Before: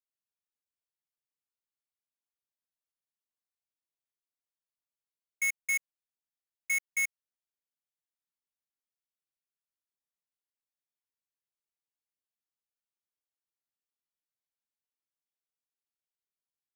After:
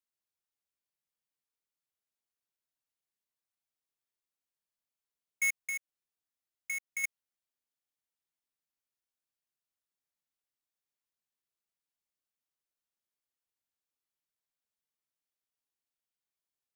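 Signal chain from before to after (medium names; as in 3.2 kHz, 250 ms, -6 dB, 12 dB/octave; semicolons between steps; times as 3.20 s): 5.57–7.04 s: compression, threshold -36 dBFS, peak gain reduction 7.5 dB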